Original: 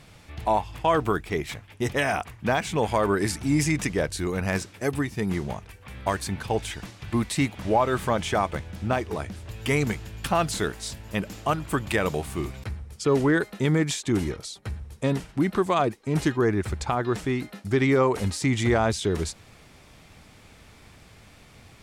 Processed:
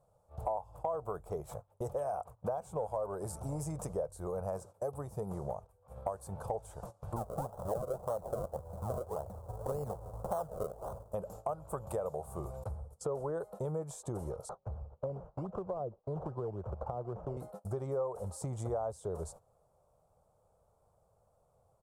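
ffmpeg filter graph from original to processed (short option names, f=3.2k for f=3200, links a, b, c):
-filter_complex "[0:a]asettb=1/sr,asplit=3[a][b][c];[a]atrim=end=2.574[d];[b]atrim=start=2.57:end=3.64,asetpts=PTS-STARTPTS,afade=t=in:d=0.004:c=qsin,afade=t=out:st=1.066:d=0.004:c=qsin,bandreject=f=1.9k:w=9.7,aeval=exprs='clip(val(0),-1,0.112)':c=same[e];[c]atrim=start=3.636[f];[d][e]acrossfade=d=0.004:c1=hsin:c2=qsin[g];[g][f]acrossfade=d=0.004:c1=qsin:c2=hsin,asettb=1/sr,asplit=3[h][i][j];[h]atrim=end=7.164[k];[i]atrim=start=7.16:end=11.12,asetpts=PTS-STARTPTS,afade=t=in:d=0.004:c=qsin,afade=t=out:st=3.956:d=0.004:c=qsin,lowpass=f=6.1k:w=0.5412,lowpass=f=6.1k:w=1.3066,acrusher=samples=35:mix=1:aa=0.000001:lfo=1:lforange=35:lforate=1.8[l];[j]atrim=start=11.116[m];[k][l]acrossfade=d=0.004:c1=hsin:c2=qsin[n];[n][m]acrossfade=d=0.004:c1=qsin:c2=hsin,asettb=1/sr,asplit=3[o][p][q];[o]atrim=end=14.494[r];[p]atrim=start=14.49:end=17.37,asetpts=PTS-STARTPTS,afade=t=in:d=0.004:c=qsin,afade=t=out:st=2.876:d=0.004:c=qsin,acrusher=samples=14:mix=1:aa=0.000001:lfo=1:lforange=8.4:lforate=3.6,acrossover=split=200|420[s][t][u];[s]acompressor=threshold=-30dB:ratio=4[v];[t]acompressor=threshold=-29dB:ratio=4[w];[u]acompressor=threshold=-38dB:ratio=4[x];[v][w][x]amix=inputs=3:normalize=0,lowpass=2.6k[y];[q]atrim=start=17.366[z];[r][y]acrossfade=d=0.004:c1=hsin:c2=qsin[aa];[aa][z]acrossfade=d=0.004:c1=qsin:c2=hsin,agate=range=-16dB:threshold=-39dB:ratio=16:detection=peak,firequalizer=gain_entry='entry(150,0);entry(270,-13);entry(520,13);entry(1300,-2);entry(1900,-27);entry(8300,-1)':delay=0.05:min_phase=1,acompressor=threshold=-30dB:ratio=4,volume=-5.5dB"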